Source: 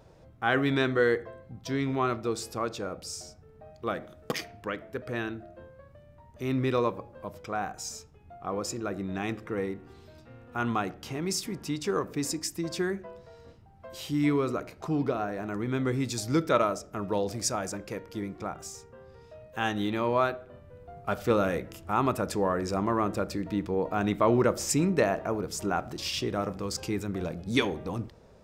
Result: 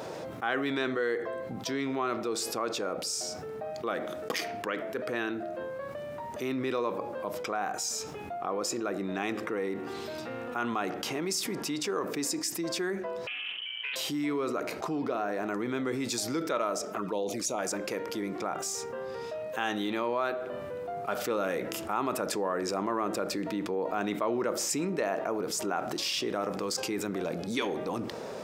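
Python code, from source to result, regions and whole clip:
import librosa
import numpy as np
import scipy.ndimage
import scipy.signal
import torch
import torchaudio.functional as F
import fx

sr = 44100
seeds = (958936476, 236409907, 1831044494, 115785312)

y = fx.chain(x, sr, fx.freq_invert(carrier_hz=3100),
    fx.doppler_dist(depth_ms=0.37), at=(13.27, 13.96))
y = fx.chain(y, sr, fx.highpass(hz=110.0, slope=6),
    fx.env_flanger(rest_ms=5.4, full_db=-27.5), at=(16.85, 17.59))
y = scipy.signal.sosfilt(scipy.signal.butter(2, 280.0, 'highpass', fs=sr, output='sos'), y)
y = fx.env_flatten(y, sr, amount_pct=70)
y = F.gain(torch.from_numpy(y), -7.5).numpy()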